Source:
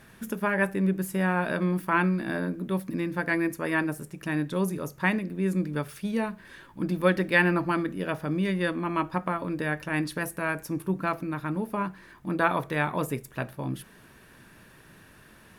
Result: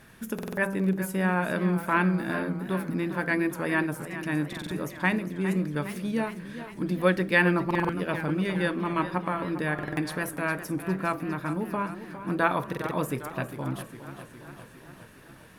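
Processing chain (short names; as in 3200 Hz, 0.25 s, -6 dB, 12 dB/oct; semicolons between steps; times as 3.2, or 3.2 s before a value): de-hum 195.3 Hz, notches 8; stuck buffer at 0.34/4.48/7.66/9.74/12.68, samples 2048, times 4; warbling echo 0.407 s, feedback 64%, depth 99 cents, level -12 dB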